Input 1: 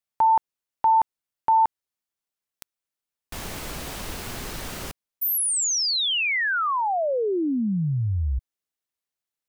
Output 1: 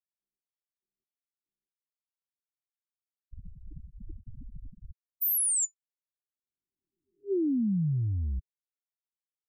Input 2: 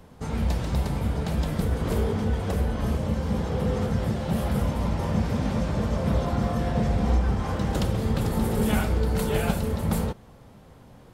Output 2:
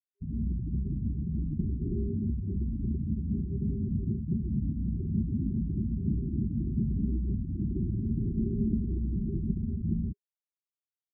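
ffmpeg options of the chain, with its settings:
ffmpeg -i in.wav -filter_complex "[0:a]afftfilt=real='re*gte(hypot(re,im),0.1)':imag='im*gte(hypot(re,im),0.1)':win_size=1024:overlap=0.75,acrossover=split=130|670|2400[link_01][link_02][link_03][link_04];[link_01]asoftclip=type=tanh:threshold=-25.5dB[link_05];[link_05][link_02][link_03][link_04]amix=inputs=4:normalize=0,afftfilt=real='re*(1-between(b*sr/4096,400,7000))':imag='im*(1-between(b*sr/4096,400,7000))':win_size=4096:overlap=0.75,volume=-3dB" out.wav

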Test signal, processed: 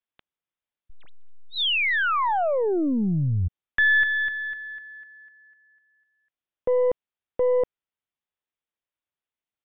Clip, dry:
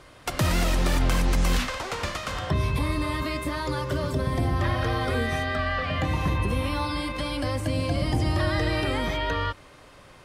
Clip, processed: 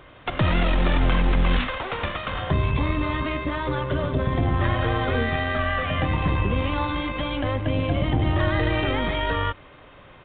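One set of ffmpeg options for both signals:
ffmpeg -i in.wav -af "aeval=exprs='0.188*(cos(1*acos(clip(val(0)/0.188,-1,1)))-cos(1*PI/2))+0.0133*(cos(4*acos(clip(val(0)/0.188,-1,1)))-cos(4*PI/2))+0.00211*(cos(8*acos(clip(val(0)/0.188,-1,1)))-cos(8*PI/2))':channel_layout=same,aresample=8000,aresample=44100,volume=2.5dB" out.wav

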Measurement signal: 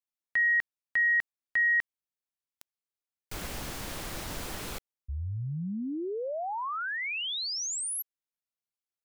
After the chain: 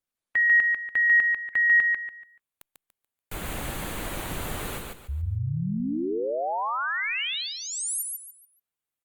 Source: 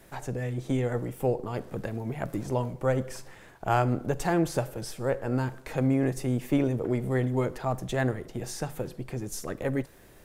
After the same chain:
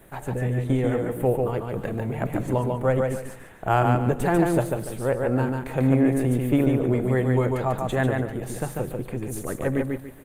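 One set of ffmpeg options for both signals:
ffmpeg -i in.wav -af "equalizer=frequency=5300:width_type=o:width=0.48:gain=-14.5,aecho=1:1:144|288|432|576:0.668|0.194|0.0562|0.0163,volume=4dB" -ar 48000 -c:a libopus -b:a 32k out.opus

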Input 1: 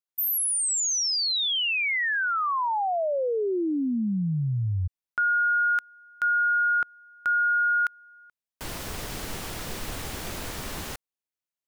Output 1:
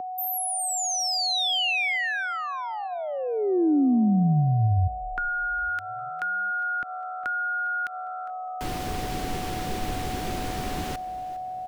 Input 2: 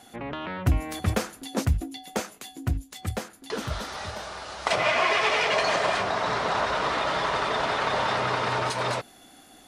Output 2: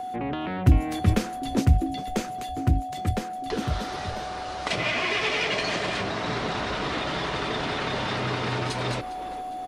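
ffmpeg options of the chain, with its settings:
ffmpeg -i in.wav -filter_complex "[0:a]highshelf=frequency=4300:gain=-9.5,aeval=exprs='val(0)+0.02*sin(2*PI*740*n/s)':channel_layout=same,asplit=2[link_01][link_02];[link_02]asplit=4[link_03][link_04][link_05][link_06];[link_03]adelay=406,afreqshift=-72,volume=-18dB[link_07];[link_04]adelay=812,afreqshift=-144,volume=-25.1dB[link_08];[link_05]adelay=1218,afreqshift=-216,volume=-32.3dB[link_09];[link_06]adelay=1624,afreqshift=-288,volume=-39.4dB[link_10];[link_07][link_08][link_09][link_10]amix=inputs=4:normalize=0[link_11];[link_01][link_11]amix=inputs=2:normalize=0,acrossover=split=280|2100[link_12][link_13][link_14];[link_13]acompressor=threshold=-38dB:ratio=6:attack=11:release=185:knee=2.83:detection=peak[link_15];[link_12][link_15][link_14]amix=inputs=3:normalize=0,equalizer=frequency=340:width_type=o:width=1.1:gain=6,volume=4.5dB" out.wav

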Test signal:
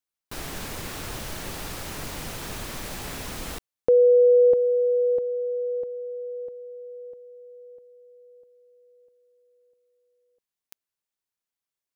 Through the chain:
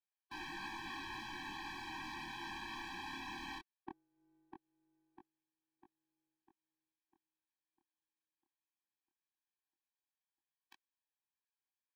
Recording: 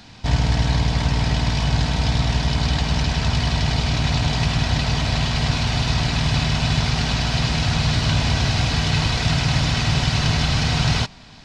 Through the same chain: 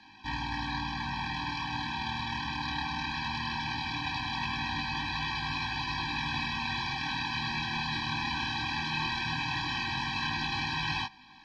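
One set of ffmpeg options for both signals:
ffmpeg -i in.wav -filter_complex "[0:a]acrossover=split=310 4300:gain=0.1 1 0.0631[link_01][link_02][link_03];[link_01][link_02][link_03]amix=inputs=3:normalize=0,flanger=delay=19.5:depth=7.3:speed=0.18,afftfilt=real='re*eq(mod(floor(b*sr/1024/380),2),0)':imag='im*eq(mod(floor(b*sr/1024/380),2),0)':win_size=1024:overlap=0.75" out.wav

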